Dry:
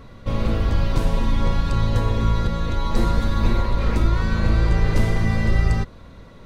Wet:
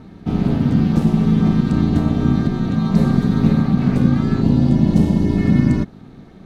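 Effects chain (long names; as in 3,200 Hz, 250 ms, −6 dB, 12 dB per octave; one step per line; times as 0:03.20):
low-shelf EQ 230 Hz +6 dB
ring modulation 190 Hz
gain on a spectral selection 0:04.42–0:05.37, 1,100–2,600 Hz −8 dB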